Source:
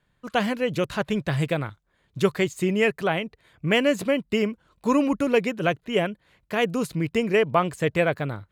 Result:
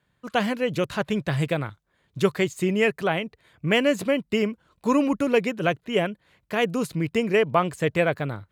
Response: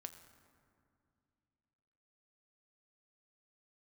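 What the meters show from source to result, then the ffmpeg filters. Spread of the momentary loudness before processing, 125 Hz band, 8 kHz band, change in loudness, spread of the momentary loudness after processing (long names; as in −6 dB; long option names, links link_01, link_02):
9 LU, 0.0 dB, 0.0 dB, 0.0 dB, 9 LU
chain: -af "highpass=55"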